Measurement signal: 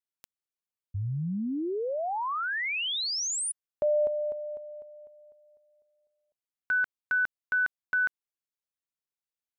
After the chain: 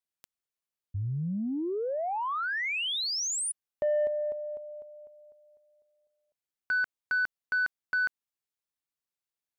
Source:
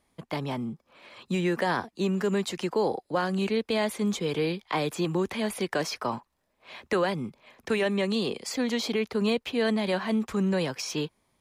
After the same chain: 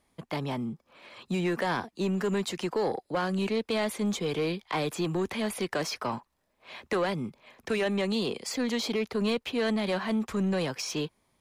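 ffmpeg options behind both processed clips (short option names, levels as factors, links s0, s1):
-af "asoftclip=type=tanh:threshold=0.0891"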